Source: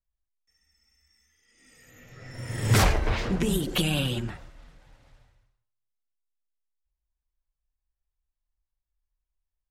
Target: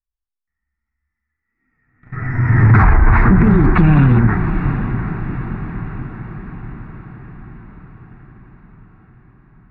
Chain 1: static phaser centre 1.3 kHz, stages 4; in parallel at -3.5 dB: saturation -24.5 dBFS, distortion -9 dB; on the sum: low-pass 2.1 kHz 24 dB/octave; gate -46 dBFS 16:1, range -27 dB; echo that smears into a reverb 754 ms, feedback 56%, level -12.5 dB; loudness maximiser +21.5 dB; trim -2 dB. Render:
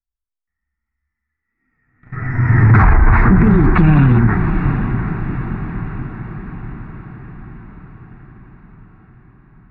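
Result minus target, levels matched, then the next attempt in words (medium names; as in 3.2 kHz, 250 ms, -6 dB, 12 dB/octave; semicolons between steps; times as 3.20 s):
saturation: distortion -6 dB
static phaser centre 1.3 kHz, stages 4; in parallel at -3.5 dB: saturation -34.5 dBFS, distortion -3 dB; on the sum: low-pass 2.1 kHz 24 dB/octave; gate -46 dBFS 16:1, range -27 dB; echo that smears into a reverb 754 ms, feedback 56%, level -12.5 dB; loudness maximiser +21.5 dB; trim -2 dB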